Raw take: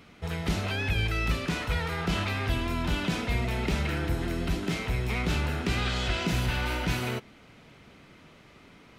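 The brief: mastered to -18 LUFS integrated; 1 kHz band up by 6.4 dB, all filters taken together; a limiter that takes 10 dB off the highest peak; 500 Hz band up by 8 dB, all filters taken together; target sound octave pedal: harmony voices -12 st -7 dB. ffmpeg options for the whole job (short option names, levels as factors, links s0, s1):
-filter_complex "[0:a]equalizer=f=500:t=o:g=9,equalizer=f=1000:t=o:g=5.5,alimiter=limit=0.0891:level=0:latency=1,asplit=2[s0][s1];[s1]asetrate=22050,aresample=44100,atempo=2,volume=0.447[s2];[s0][s2]amix=inputs=2:normalize=0,volume=3.76"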